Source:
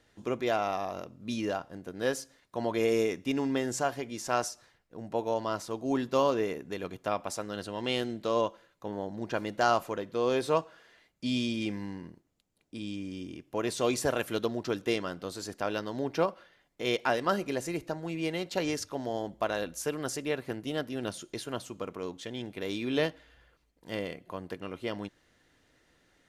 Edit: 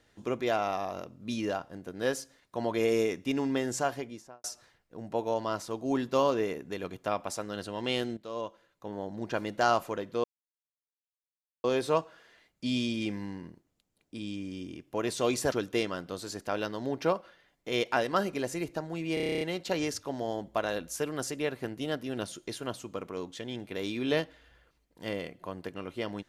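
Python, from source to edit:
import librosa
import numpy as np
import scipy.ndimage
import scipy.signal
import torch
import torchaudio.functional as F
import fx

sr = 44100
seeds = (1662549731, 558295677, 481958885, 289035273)

y = fx.studio_fade_out(x, sr, start_s=3.92, length_s=0.52)
y = fx.edit(y, sr, fx.fade_in_from(start_s=8.17, length_s=1.03, floor_db=-13.5),
    fx.insert_silence(at_s=10.24, length_s=1.4),
    fx.cut(start_s=14.12, length_s=0.53),
    fx.stutter(start_s=18.27, slice_s=0.03, count=10), tone=tone)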